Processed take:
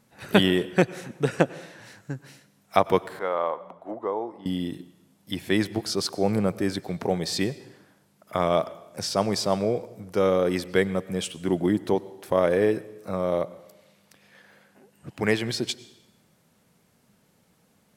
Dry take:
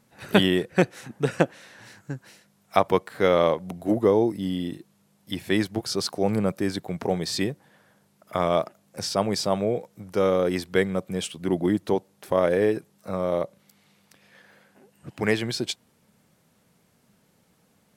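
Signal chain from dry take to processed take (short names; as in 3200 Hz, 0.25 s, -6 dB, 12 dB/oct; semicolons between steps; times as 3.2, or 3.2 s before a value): 3.19–4.46 band-pass 970 Hz, Q 1.8; reverb RT60 1.0 s, pre-delay 88 ms, DRR 18 dB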